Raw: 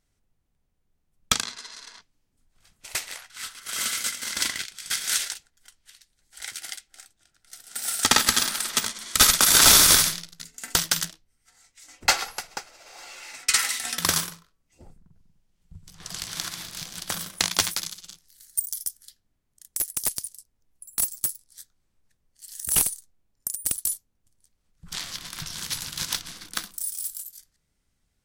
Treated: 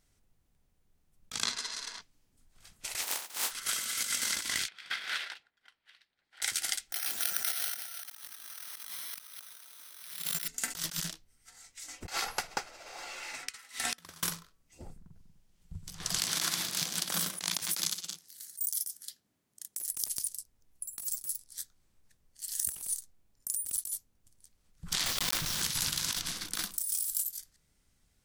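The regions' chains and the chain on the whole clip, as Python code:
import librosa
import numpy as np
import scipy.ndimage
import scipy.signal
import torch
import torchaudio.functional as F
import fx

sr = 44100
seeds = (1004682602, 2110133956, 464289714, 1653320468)

y = fx.spec_flatten(x, sr, power=0.2, at=(3.01, 3.5), fade=0.02)
y = fx.highpass(y, sr, hz=310.0, slope=12, at=(3.01, 3.5), fade=0.02)
y = fx.peak_eq(y, sr, hz=890.0, db=5.5, octaves=0.52, at=(3.01, 3.5), fade=0.02)
y = fx.chain(y, sr, fx.highpass(hz=910.0, slope=6),
    fx.air_absorb(metres=400.0), at=(4.68, 6.42))
y = fx.chain(y, sr, fx.weighting(curve='A'),
    fx.resample_bad(factor=6, down='filtered', up='zero_stuff'),
    fx.env_flatten(amount_pct=50), at=(6.92, 10.48))
y = fx.chain(y, sr, fx.gate_flip(shuts_db=-14.0, range_db=-28),
    fx.high_shelf(hz=3800.0, db=-8.5), at=(12.24, 14.23))
y = fx.chain(y, sr, fx.highpass(hz=190.0, slope=12),
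    fx.low_shelf(hz=370.0, db=4.0), at=(16.2, 19.86))
y = fx.chain(y, sr, fx.high_shelf(hz=9000.0, db=-9.5),
    fx.quant_companded(bits=2), at=(25.06, 25.62))
y = fx.high_shelf(y, sr, hz=4600.0, db=3.0)
y = fx.over_compress(y, sr, threshold_db=-32.0, ratio=-1.0)
y = y * 10.0 ** (-6.5 / 20.0)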